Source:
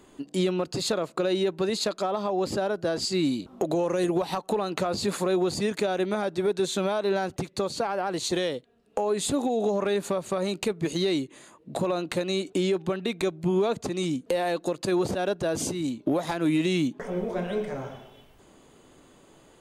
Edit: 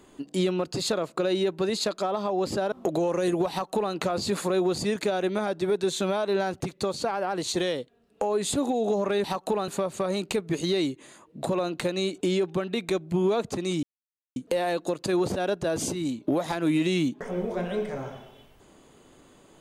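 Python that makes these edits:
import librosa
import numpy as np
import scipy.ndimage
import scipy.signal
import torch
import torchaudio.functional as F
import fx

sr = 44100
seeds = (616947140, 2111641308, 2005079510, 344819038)

y = fx.edit(x, sr, fx.cut(start_s=2.72, length_s=0.76),
    fx.duplicate(start_s=4.26, length_s=0.44, to_s=10.0),
    fx.insert_silence(at_s=14.15, length_s=0.53), tone=tone)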